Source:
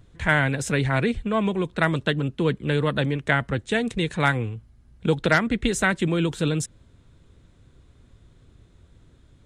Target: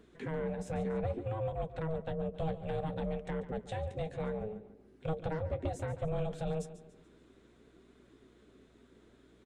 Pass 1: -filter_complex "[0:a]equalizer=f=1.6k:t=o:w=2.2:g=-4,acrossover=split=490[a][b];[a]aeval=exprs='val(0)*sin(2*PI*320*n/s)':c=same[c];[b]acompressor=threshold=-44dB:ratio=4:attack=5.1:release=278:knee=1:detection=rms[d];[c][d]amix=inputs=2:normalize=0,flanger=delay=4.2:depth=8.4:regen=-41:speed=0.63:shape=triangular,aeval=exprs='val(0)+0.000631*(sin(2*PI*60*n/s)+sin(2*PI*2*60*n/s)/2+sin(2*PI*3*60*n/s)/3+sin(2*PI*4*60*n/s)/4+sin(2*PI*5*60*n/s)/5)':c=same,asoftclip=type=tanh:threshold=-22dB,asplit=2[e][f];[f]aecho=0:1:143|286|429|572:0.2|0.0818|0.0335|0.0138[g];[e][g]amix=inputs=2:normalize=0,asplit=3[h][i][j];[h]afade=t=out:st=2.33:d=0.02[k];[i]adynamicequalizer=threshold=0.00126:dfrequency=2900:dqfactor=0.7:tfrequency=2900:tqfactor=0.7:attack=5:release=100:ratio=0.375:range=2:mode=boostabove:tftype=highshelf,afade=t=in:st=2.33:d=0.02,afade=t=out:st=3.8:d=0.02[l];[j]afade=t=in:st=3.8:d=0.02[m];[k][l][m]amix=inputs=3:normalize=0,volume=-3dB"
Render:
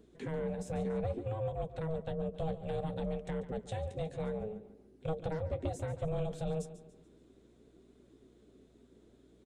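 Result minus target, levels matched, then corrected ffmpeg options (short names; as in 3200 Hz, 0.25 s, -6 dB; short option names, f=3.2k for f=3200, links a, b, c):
2000 Hz band -3.0 dB
-filter_complex "[0:a]equalizer=f=1.6k:t=o:w=2.2:g=5.5,acrossover=split=490[a][b];[a]aeval=exprs='val(0)*sin(2*PI*320*n/s)':c=same[c];[b]acompressor=threshold=-44dB:ratio=4:attack=5.1:release=278:knee=1:detection=rms[d];[c][d]amix=inputs=2:normalize=0,flanger=delay=4.2:depth=8.4:regen=-41:speed=0.63:shape=triangular,aeval=exprs='val(0)+0.000631*(sin(2*PI*60*n/s)+sin(2*PI*2*60*n/s)/2+sin(2*PI*3*60*n/s)/3+sin(2*PI*4*60*n/s)/4+sin(2*PI*5*60*n/s)/5)':c=same,asoftclip=type=tanh:threshold=-22dB,asplit=2[e][f];[f]aecho=0:1:143|286|429|572:0.2|0.0818|0.0335|0.0138[g];[e][g]amix=inputs=2:normalize=0,asplit=3[h][i][j];[h]afade=t=out:st=2.33:d=0.02[k];[i]adynamicequalizer=threshold=0.00126:dfrequency=2900:dqfactor=0.7:tfrequency=2900:tqfactor=0.7:attack=5:release=100:ratio=0.375:range=2:mode=boostabove:tftype=highshelf,afade=t=in:st=2.33:d=0.02,afade=t=out:st=3.8:d=0.02[l];[j]afade=t=in:st=3.8:d=0.02[m];[k][l][m]amix=inputs=3:normalize=0,volume=-3dB"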